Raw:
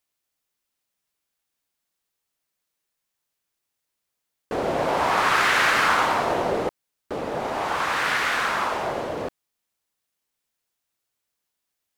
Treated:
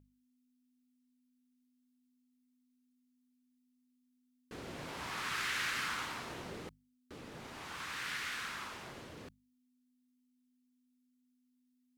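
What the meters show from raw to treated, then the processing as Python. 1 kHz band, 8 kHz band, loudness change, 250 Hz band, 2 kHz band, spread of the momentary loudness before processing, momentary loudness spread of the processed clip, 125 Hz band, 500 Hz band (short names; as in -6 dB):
-22.0 dB, -11.0 dB, -17.0 dB, -17.5 dB, -16.5 dB, 14 LU, 18 LU, -14.0 dB, -25.0 dB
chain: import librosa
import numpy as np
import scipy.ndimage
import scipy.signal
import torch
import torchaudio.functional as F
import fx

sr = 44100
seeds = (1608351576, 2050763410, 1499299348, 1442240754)

y = fx.tone_stack(x, sr, knobs='6-0-2')
y = fx.add_hum(y, sr, base_hz=50, snr_db=14)
y = fx.low_shelf(y, sr, hz=66.0, db=-7.5)
y = fx.hum_notches(y, sr, base_hz=50, count=4)
y = F.gain(torch.from_numpy(y), 3.5).numpy()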